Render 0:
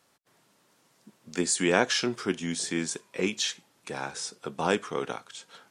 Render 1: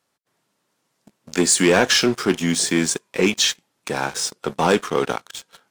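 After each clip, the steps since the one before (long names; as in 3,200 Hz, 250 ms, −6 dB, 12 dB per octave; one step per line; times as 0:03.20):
leveller curve on the samples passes 3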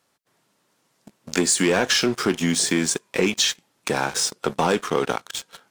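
downward compressor 3 to 1, threshold −23 dBFS, peak gain reduction 8.5 dB
level +4 dB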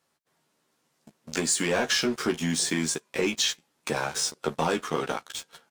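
double-tracking delay 13 ms −4 dB
level −6.5 dB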